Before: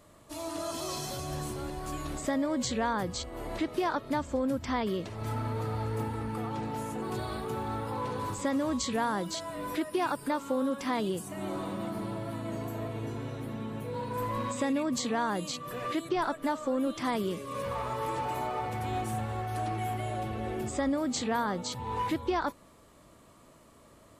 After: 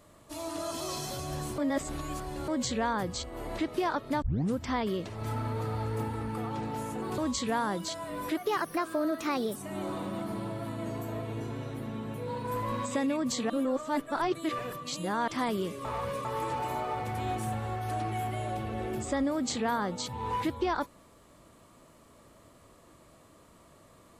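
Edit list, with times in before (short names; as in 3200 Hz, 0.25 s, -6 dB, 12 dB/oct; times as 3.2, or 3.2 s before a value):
1.58–2.48 reverse
4.22 tape start 0.34 s
7.18–8.64 cut
9.83–11.22 speed 117%
15.16–16.94 reverse
17.51–17.91 reverse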